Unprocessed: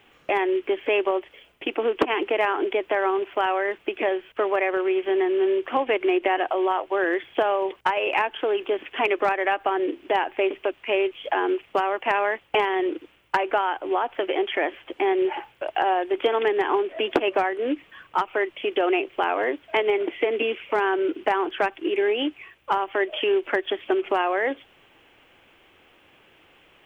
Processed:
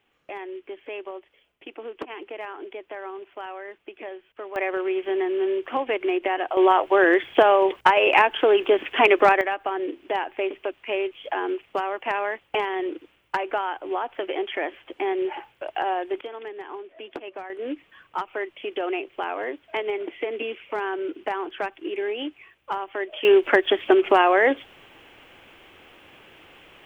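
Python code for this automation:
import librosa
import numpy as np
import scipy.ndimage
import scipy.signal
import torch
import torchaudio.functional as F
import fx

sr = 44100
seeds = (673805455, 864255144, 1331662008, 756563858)

y = fx.gain(x, sr, db=fx.steps((0.0, -13.0), (4.56, -2.5), (6.57, 6.0), (9.41, -3.5), (16.21, -14.5), (17.5, -5.5), (23.25, 6.0)))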